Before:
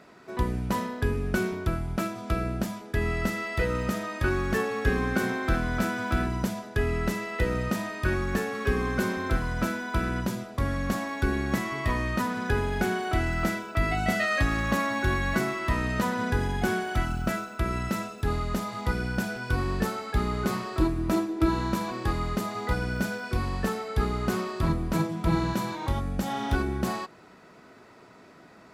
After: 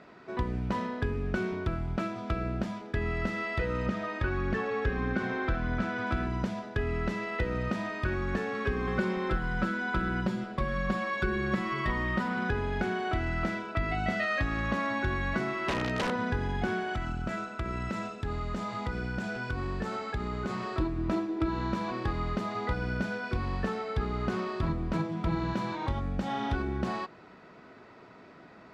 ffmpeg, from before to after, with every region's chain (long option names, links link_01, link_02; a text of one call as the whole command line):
ffmpeg -i in.wav -filter_complex "[0:a]asettb=1/sr,asplit=3[link_01][link_02][link_03];[link_01]atrim=end=3.864[link_04];[link_02]atrim=start=3.86:end=6.07,asetpts=PTS-STARTPTS,afade=type=in:duration=0.004:curve=qsin,afade=type=out:start_time=2.206:duration=0.004:curve=qsin,equalizer=frequency=12000:width=0.65:gain=-10,aphaser=in_gain=1:out_gain=1:delay=2.7:decay=0.27:speed=1.6:type=triangular[link_05];[link_03]atrim=start=6.066[link_06];[link_04][link_05]acrossfade=duration=0.004:curve1=hsin:curve2=qsin[link_07];[link_07][link_06]acrossfade=duration=0.004:curve1=qsin:curve2=hsin,asettb=1/sr,asplit=3[link_08][link_09][link_10];[link_08]atrim=end=8.874[link_11];[link_09]atrim=start=8.87:end=12.5,asetpts=PTS-STARTPTS,afade=type=in:duration=0.004:curve=qsin,afade=type=out:start_time=3.626:duration=0.004:curve=qsin,bandreject=frequency=6100:width=9.9,aecho=1:1:5.4:0.91,atrim=end_sample=160083[link_12];[link_10]atrim=start=12.496[link_13];[link_11][link_12]acrossfade=duration=0.004:curve1=hsin:curve2=qsin[link_14];[link_14][link_13]acrossfade=duration=0.004:curve1=qsin:curve2=hsin,asettb=1/sr,asplit=3[link_15][link_16][link_17];[link_15]atrim=end=15.674[link_18];[link_16]atrim=start=15.67:end=16.16,asetpts=PTS-STARTPTS,afade=type=in:duration=0.004:curve=qsin,afade=type=out:start_time=0.486:duration=0.004:curve=qsin,highpass=89,aeval=exprs='(mod(11.2*val(0)+1,2)-1)/11.2':channel_layout=same,equalizer=frequency=440:width_type=o:width=1.2:gain=6[link_19];[link_17]atrim=start=16.156[link_20];[link_18][link_19]acrossfade=duration=0.004:curve1=hsin:curve2=qsin[link_21];[link_21][link_20]acrossfade=duration=0.004:curve1=qsin:curve2=hsin,asettb=1/sr,asplit=3[link_22][link_23][link_24];[link_22]atrim=end=16.934[link_25];[link_23]atrim=start=16.93:end=20.77,asetpts=PTS-STARTPTS,afade=type=in:duration=0.004:curve=qsin,afade=type=out:start_time=3.836:duration=0.004:curve=qsin,equalizer=frequency=7400:width_type=o:width=0.37:gain=6,acompressor=threshold=-30dB:ratio=2.5:attack=3.2:release=140:knee=1:detection=peak[link_26];[link_24]atrim=start=20.766[link_27];[link_25][link_26]acrossfade=duration=0.004:curve1=hsin:curve2=qsin[link_28];[link_28][link_27]acrossfade=duration=0.004:curve1=qsin:curve2=hsin,lowpass=4000,acompressor=threshold=-28dB:ratio=2.5" out.wav